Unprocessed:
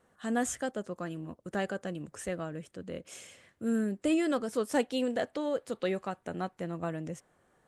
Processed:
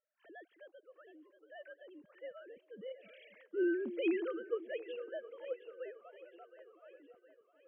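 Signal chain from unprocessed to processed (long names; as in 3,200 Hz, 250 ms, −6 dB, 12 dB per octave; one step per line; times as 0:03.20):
three sine waves on the formant tracks
source passing by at 0:03.50, 7 m/s, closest 1.4 metres
echo with a time of its own for lows and highs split 490 Hz, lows 267 ms, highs 715 ms, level −13 dB
level +3.5 dB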